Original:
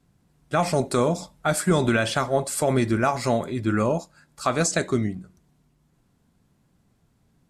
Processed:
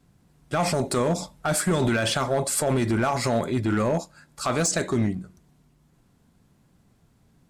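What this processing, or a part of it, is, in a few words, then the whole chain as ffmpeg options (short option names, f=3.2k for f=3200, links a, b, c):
limiter into clipper: -af "alimiter=limit=-16.5dB:level=0:latency=1:release=45,asoftclip=type=hard:threshold=-20.5dB,volume=3.5dB"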